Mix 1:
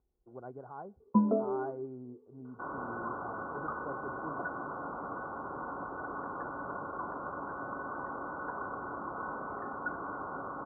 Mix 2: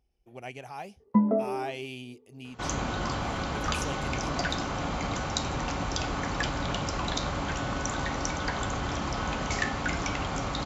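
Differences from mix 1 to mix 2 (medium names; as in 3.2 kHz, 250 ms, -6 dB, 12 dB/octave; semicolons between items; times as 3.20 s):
second sound: remove high-pass 620 Hz 6 dB/octave; master: remove rippled Chebyshev low-pass 1.5 kHz, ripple 6 dB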